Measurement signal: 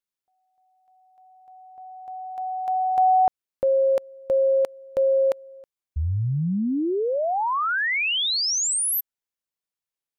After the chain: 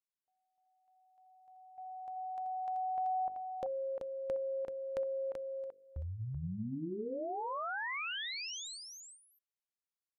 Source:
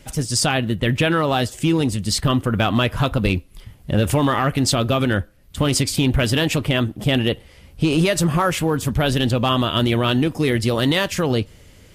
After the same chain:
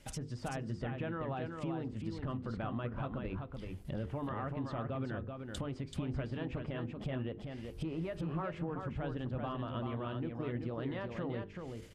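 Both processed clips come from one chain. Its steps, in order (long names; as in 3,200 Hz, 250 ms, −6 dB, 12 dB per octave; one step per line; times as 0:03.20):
treble cut that deepens with the level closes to 1,500 Hz, closed at −19 dBFS
noise gate −46 dBFS, range −7 dB
mains-hum notches 50/100/150/200/250/300/350/400/450/500 Hz
downward compressor 2.5 to 1, threshold −39 dBFS
single-tap delay 383 ms −5 dB
level −5 dB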